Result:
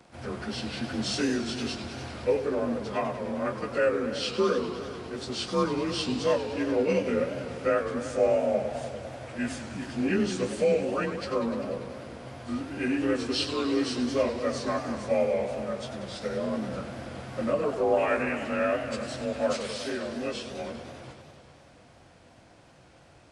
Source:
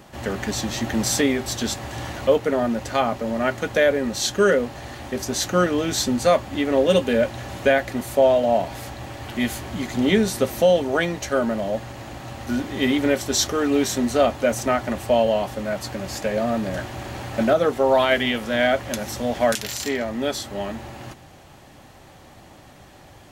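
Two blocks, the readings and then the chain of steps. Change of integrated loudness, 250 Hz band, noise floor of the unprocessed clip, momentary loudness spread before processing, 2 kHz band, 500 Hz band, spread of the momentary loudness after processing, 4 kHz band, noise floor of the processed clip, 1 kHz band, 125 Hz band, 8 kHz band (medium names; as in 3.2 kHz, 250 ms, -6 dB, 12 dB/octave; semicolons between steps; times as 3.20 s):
-7.0 dB, -6.5 dB, -47 dBFS, 12 LU, -9.0 dB, -7.0 dB, 11 LU, -7.5 dB, -55 dBFS, -8.5 dB, -7.5 dB, -14.0 dB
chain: frequency axis rescaled in octaves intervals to 90%; modulated delay 99 ms, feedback 79%, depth 195 cents, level -10.5 dB; trim -6.5 dB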